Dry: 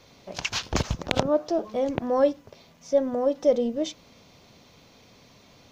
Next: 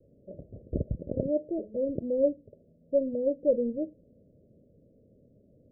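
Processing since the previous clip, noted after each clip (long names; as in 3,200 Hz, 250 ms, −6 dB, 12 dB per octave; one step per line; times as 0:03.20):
Butterworth low-pass 610 Hz 96 dB per octave
level −3.5 dB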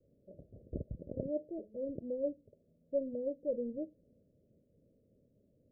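amplitude modulation by smooth noise, depth 55%
level −6.5 dB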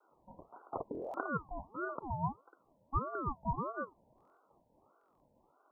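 buffer that repeats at 0:00.93/0:04.16/0:04.99, samples 1,024, times 8
ring modulator whose carrier an LFO sweeps 640 Hz, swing 45%, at 1.6 Hz
level +2.5 dB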